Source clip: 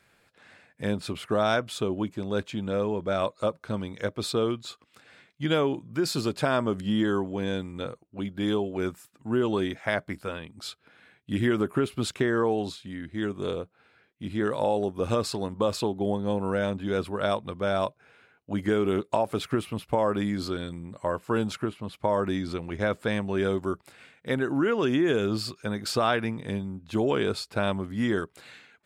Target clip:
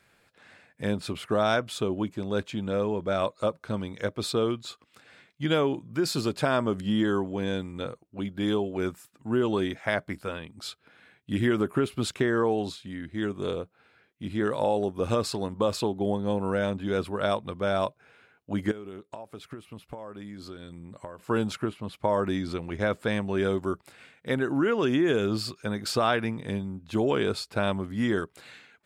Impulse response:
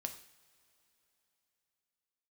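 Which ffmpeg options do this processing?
-filter_complex "[0:a]asettb=1/sr,asplit=3[a][b][c];[a]atrim=end=18.714[d];[b]atrim=start=18.71:end=21.19,asetpts=PTS-STARTPTS,afade=t=in:d=0.004:c=qsin,afade=t=out:st=2.476:d=0.004:c=qsin,acompressor=threshold=-39dB:ratio=6[e];[c]atrim=start=21.186[f];[d][e]acrossfade=d=0.004:c1=hsin:c2=qsin[g];[g][f]acrossfade=d=0.004:c1=qsin:c2=hsin"

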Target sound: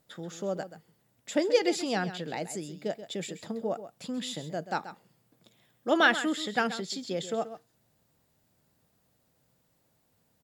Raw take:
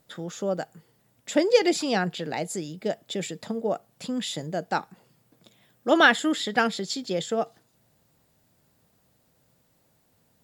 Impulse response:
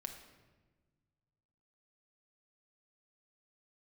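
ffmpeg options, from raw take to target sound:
-af "aecho=1:1:132:0.237,volume=-5dB"

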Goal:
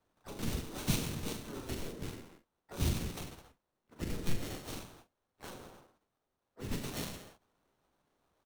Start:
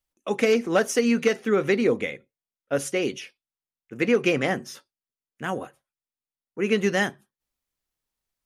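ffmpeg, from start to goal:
-filter_complex "[0:a]aderivative,aecho=1:1:40|86|138.9|199.7|269.7:0.631|0.398|0.251|0.158|0.1,acrossover=split=1600[a][b];[b]acrusher=samples=18:mix=1:aa=0.000001[c];[a][c]amix=inputs=2:normalize=0,acrossover=split=320|3000[d][e][f];[e]acompressor=threshold=-55dB:ratio=4[g];[d][g][f]amix=inputs=3:normalize=0,asplit=4[h][i][j][k];[i]asetrate=29433,aresample=44100,atempo=1.49831,volume=-2dB[l];[j]asetrate=35002,aresample=44100,atempo=1.25992,volume=-4dB[m];[k]asetrate=58866,aresample=44100,atempo=0.749154,volume=-9dB[n];[h][l][m][n]amix=inputs=4:normalize=0,volume=1.5dB"

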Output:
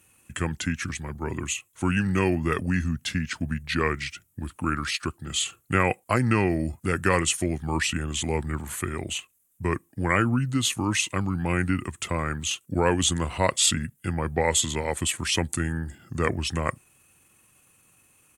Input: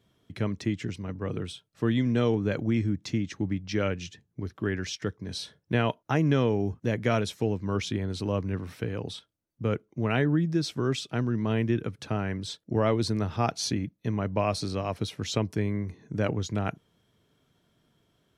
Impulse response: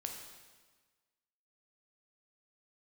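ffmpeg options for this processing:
-af "aexciter=amount=15.9:drive=5.6:freq=8.7k,asetrate=35002,aresample=44100,atempo=1.25992,equalizer=f=2.2k:t=o:w=2.9:g=10"

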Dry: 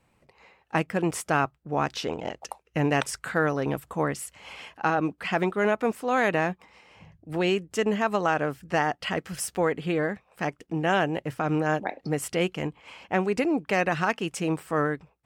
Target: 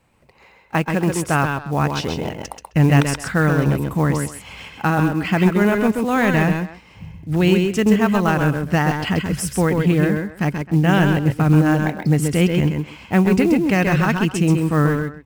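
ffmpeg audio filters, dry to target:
-filter_complex "[0:a]asplit=2[a][b];[b]aecho=0:1:132:0.531[c];[a][c]amix=inputs=2:normalize=0,acrusher=bits=6:mode=log:mix=0:aa=0.000001,asplit=2[d][e];[e]adelay=130,highpass=300,lowpass=3.4k,asoftclip=type=hard:threshold=-18.5dB,volume=-11dB[f];[d][f]amix=inputs=2:normalize=0,asubboost=boost=5:cutoff=220,volume=5dB"

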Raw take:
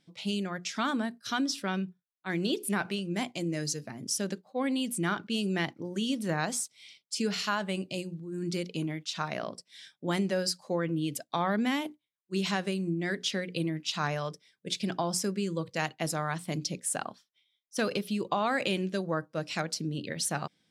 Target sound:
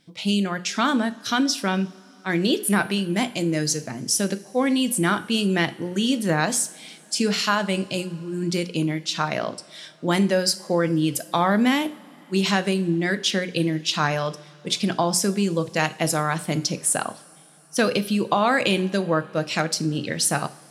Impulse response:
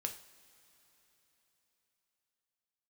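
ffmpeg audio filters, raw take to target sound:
-filter_complex "[0:a]asplit=2[a][b];[b]equalizer=f=11k:w=1.7:g=5[c];[1:a]atrim=start_sample=2205[d];[c][d]afir=irnorm=-1:irlink=0,volume=-1dB[e];[a][e]amix=inputs=2:normalize=0,volume=4dB"

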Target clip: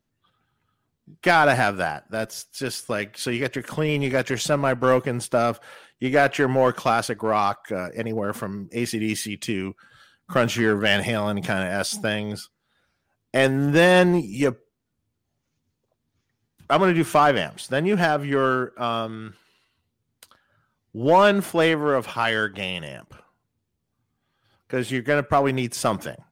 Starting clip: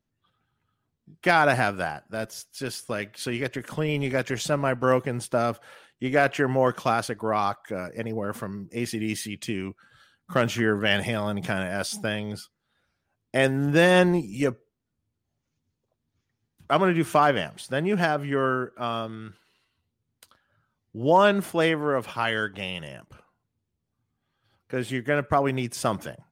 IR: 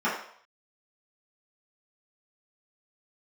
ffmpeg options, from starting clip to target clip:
-filter_complex "[0:a]asplit=2[a][b];[b]asoftclip=type=hard:threshold=-19dB,volume=-4dB[c];[a][c]amix=inputs=2:normalize=0,equalizer=f=70:w=0.48:g=-2.5"

